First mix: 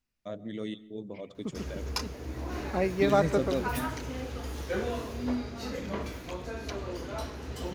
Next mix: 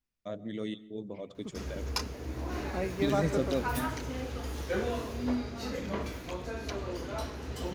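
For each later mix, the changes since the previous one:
second voice −6.5 dB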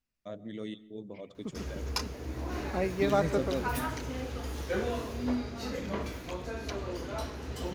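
first voice −3.0 dB
second voice +3.5 dB

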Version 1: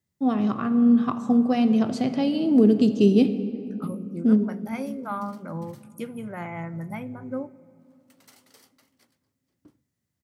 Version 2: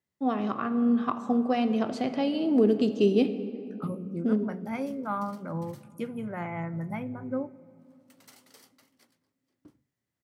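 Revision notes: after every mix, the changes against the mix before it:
first voice: add bass and treble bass −12 dB, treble −7 dB
second voice: add high-shelf EQ 5,000 Hz −10 dB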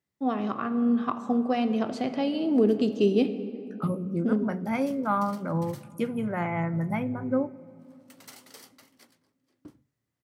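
second voice +5.5 dB
background +7.0 dB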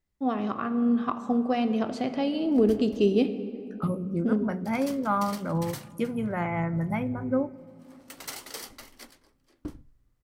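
background +10.0 dB
master: remove high-pass filter 100 Hz 24 dB per octave

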